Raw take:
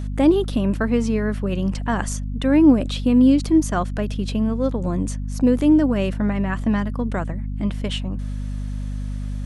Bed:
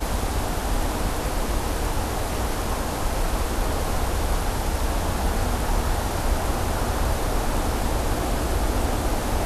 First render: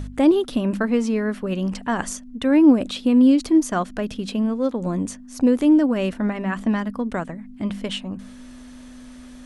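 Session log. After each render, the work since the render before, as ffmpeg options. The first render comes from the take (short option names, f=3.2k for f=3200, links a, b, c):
-af "bandreject=f=50:t=h:w=4,bandreject=f=100:t=h:w=4,bandreject=f=150:t=h:w=4,bandreject=f=200:t=h:w=4"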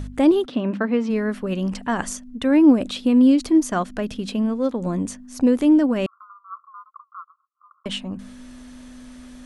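-filter_complex "[0:a]asplit=3[a][b][c];[a]afade=t=out:st=0.45:d=0.02[d];[b]highpass=170,lowpass=3.5k,afade=t=in:st=0.45:d=0.02,afade=t=out:st=1.09:d=0.02[e];[c]afade=t=in:st=1.09:d=0.02[f];[d][e][f]amix=inputs=3:normalize=0,asettb=1/sr,asplit=3[g][h][i];[g]atrim=end=6.064[j];[h]atrim=start=6.06:end=7.86,asetpts=PTS-STARTPTS,afade=t=in:d=0.004:c=qsin,afade=t=out:st=1.796:d=0.004:c=qsin,asuperpass=centerf=1200:order=12:qfactor=3.6[k];[i]atrim=start=7.856[l];[j][k]acrossfade=d=0.004:c1=hsin:c2=qsin[m];[m][l]acrossfade=d=0.004:c1=qsin:c2=hsin"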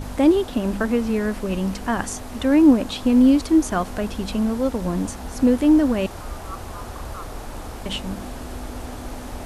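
-filter_complex "[1:a]volume=-10dB[a];[0:a][a]amix=inputs=2:normalize=0"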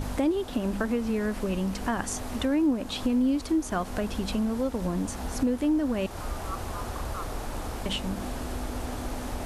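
-af "acompressor=threshold=-27dB:ratio=2.5"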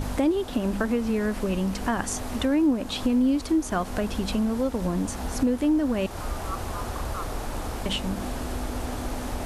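-af "volume=2.5dB"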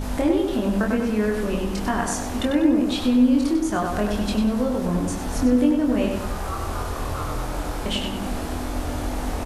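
-filter_complex "[0:a]asplit=2[a][b];[b]adelay=24,volume=-3.5dB[c];[a][c]amix=inputs=2:normalize=0,asplit=2[d][e];[e]adelay=97,lowpass=f=3.6k:p=1,volume=-3.5dB,asplit=2[f][g];[g]adelay=97,lowpass=f=3.6k:p=1,volume=0.51,asplit=2[h][i];[i]adelay=97,lowpass=f=3.6k:p=1,volume=0.51,asplit=2[j][k];[k]adelay=97,lowpass=f=3.6k:p=1,volume=0.51,asplit=2[l][m];[m]adelay=97,lowpass=f=3.6k:p=1,volume=0.51,asplit=2[n][o];[o]adelay=97,lowpass=f=3.6k:p=1,volume=0.51,asplit=2[p][q];[q]adelay=97,lowpass=f=3.6k:p=1,volume=0.51[r];[d][f][h][j][l][n][p][r]amix=inputs=8:normalize=0"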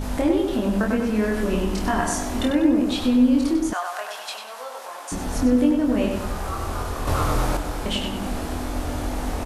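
-filter_complex "[0:a]asettb=1/sr,asplit=3[a][b][c];[a]atrim=end=1.124[d];[b]atrim=start=1.12:end=2.51,asetpts=PTS-STARTPTS,afade=t=in:d=0.004:c=qsin,afade=t=out:st=1.386:d=0.004:c=qsin,asplit=2[e][f];[f]adelay=27,volume=-5.5dB[g];[e][g]amix=inputs=2:normalize=0,atrim=end_sample=61299[h];[c]atrim=start=2.506[i];[d][h]acrossfade=d=0.004:c1=hsin:c2=qsin[j];[j][i]acrossfade=d=0.004:c1=qsin:c2=hsin,asettb=1/sr,asplit=3[k][l][m];[k]atrim=end=3.734[n];[l]atrim=start=3.73:end=5.12,asetpts=PTS-STARTPTS,afade=t=in:d=0.004:c=qsin,afade=t=out:st=1.386:d=0.004:c=qsin,highpass=f=720:w=0.5412,highpass=f=720:w=1.3066[o];[m]atrim=start=5.116[p];[n][o]acrossfade=d=0.004:c1=hsin:c2=qsin[q];[q][p]acrossfade=d=0.004:c1=qsin:c2=hsin,asettb=1/sr,asplit=3[r][s][t];[r]atrim=end=7.074[u];[s]atrim=start=7.07:end=7.57,asetpts=PTS-STARTPTS,afade=t=in:d=0.004:c=qsin,afade=t=out:st=0.496:d=0.004:c=qsin,acontrast=50[v];[t]atrim=start=7.566[w];[u][v]acrossfade=d=0.004:c1=hsin:c2=qsin[x];[x][w]acrossfade=d=0.004:c1=qsin:c2=hsin"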